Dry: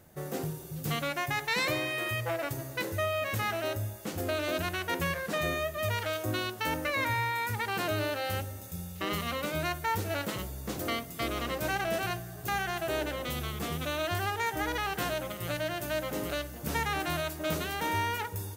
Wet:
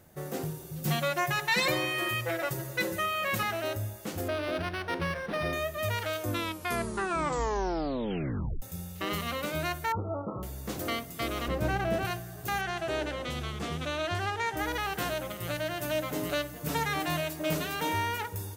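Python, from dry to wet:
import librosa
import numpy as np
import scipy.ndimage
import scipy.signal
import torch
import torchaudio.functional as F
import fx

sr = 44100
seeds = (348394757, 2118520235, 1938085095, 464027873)

y = fx.comb(x, sr, ms=5.5, depth=0.94, at=(0.82, 3.43))
y = fx.resample_linear(y, sr, factor=6, at=(4.28, 5.53))
y = fx.brickwall_lowpass(y, sr, high_hz=1400.0, at=(9.92, 10.43))
y = fx.tilt_eq(y, sr, slope=-2.5, at=(11.48, 12.05))
y = fx.lowpass(y, sr, hz=7100.0, slope=12, at=(12.61, 14.57))
y = fx.comb(y, sr, ms=6.8, depth=0.56, at=(15.78, 17.92))
y = fx.edit(y, sr, fx.tape_stop(start_s=6.2, length_s=2.42), tone=tone)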